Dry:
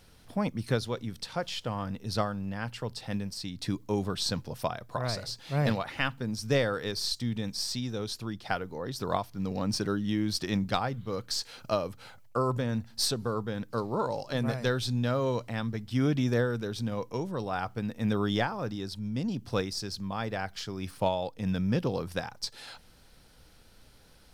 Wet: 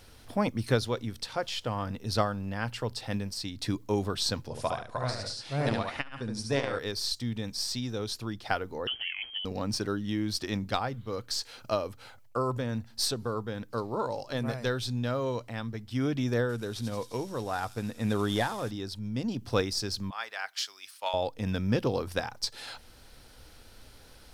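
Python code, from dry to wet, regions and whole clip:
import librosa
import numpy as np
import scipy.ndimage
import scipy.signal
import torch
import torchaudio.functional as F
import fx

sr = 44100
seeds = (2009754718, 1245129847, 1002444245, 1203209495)

y = fx.chain(x, sr, fx.resample_bad(factor=2, down='none', up='filtered'),
    fx.echo_feedback(ms=71, feedback_pct=17, wet_db=-4),
    fx.transformer_sat(knee_hz=320.0), at=(4.47, 6.79))
y = fx.chain(y, sr, fx.freq_invert(carrier_hz=3200),
    fx.over_compress(threshold_db=-36.0, ratio=-1.0), at=(8.87, 9.45))
y = fx.chain(y, sr, fx.cvsd(bps=64000),
    fx.echo_wet_highpass(ms=87, feedback_pct=73, hz=5400.0, wet_db=-3.5), at=(16.49, 18.71))
y = fx.chain(y, sr, fx.highpass(hz=1300.0, slope=12),
    fx.band_widen(depth_pct=70), at=(20.1, 21.14))
y = fx.peak_eq(y, sr, hz=170.0, db=-14.5, octaves=0.24)
y = fx.rider(y, sr, range_db=10, speed_s=2.0)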